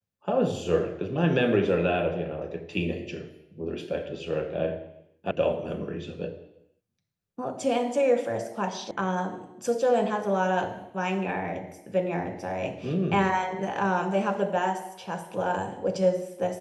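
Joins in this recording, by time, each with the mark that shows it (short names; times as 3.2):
5.31 sound cut off
8.91 sound cut off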